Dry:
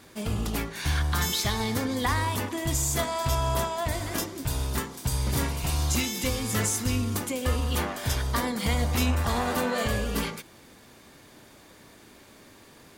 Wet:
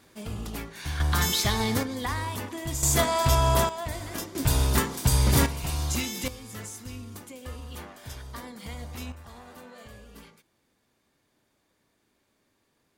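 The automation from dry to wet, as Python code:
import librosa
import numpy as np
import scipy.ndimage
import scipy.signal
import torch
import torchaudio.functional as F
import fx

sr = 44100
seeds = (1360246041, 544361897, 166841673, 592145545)

y = fx.gain(x, sr, db=fx.steps((0.0, -6.0), (1.0, 2.0), (1.83, -4.5), (2.83, 4.5), (3.69, -4.5), (4.35, 6.0), (5.46, -2.5), (6.28, -13.0), (9.12, -20.0)))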